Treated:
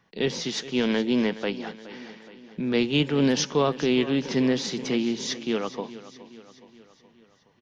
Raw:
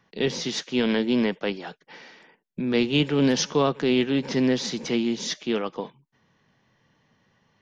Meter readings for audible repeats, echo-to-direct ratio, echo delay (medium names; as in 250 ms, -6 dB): 4, -14.5 dB, 420 ms